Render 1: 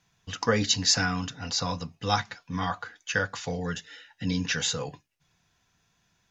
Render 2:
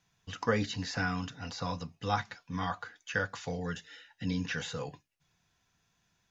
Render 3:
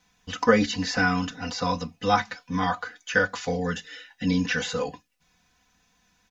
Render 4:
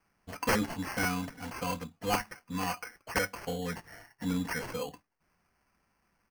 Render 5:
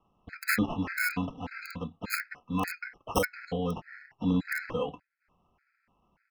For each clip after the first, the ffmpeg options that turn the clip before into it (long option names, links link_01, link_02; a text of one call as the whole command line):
ffmpeg -i in.wav -filter_complex "[0:a]acrossover=split=2700[link_01][link_02];[link_02]acompressor=threshold=-39dB:ratio=4:attack=1:release=60[link_03];[link_01][link_03]amix=inputs=2:normalize=0,volume=-4.5dB" out.wav
ffmpeg -i in.wav -af "aecho=1:1:4:0.86,volume=6.5dB" out.wav
ffmpeg -i in.wav -af "acrusher=samples=12:mix=1:aa=0.000001,aeval=exprs='(mod(3.76*val(0)+1,2)-1)/3.76':channel_layout=same,volume=-8dB" out.wav
ffmpeg -i in.wav -filter_complex "[0:a]acrossover=split=3800[link_01][link_02];[link_02]acrusher=bits=4:mix=0:aa=0.000001[link_03];[link_01][link_03]amix=inputs=2:normalize=0,afftfilt=real='re*gt(sin(2*PI*1.7*pts/sr)*(1-2*mod(floor(b*sr/1024/1300),2)),0)':imag='im*gt(sin(2*PI*1.7*pts/sr)*(1-2*mod(floor(b*sr/1024/1300),2)),0)':win_size=1024:overlap=0.75,volume=5.5dB" out.wav